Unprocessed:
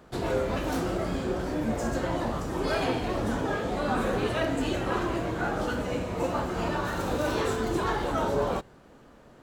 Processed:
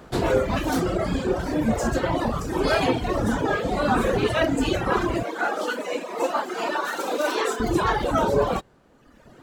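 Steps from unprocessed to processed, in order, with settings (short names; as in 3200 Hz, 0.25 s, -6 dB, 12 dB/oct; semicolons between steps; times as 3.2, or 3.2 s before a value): reverb removal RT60 1.3 s; 5.23–7.6 Bessel high-pass 410 Hz, order 8; gain +8 dB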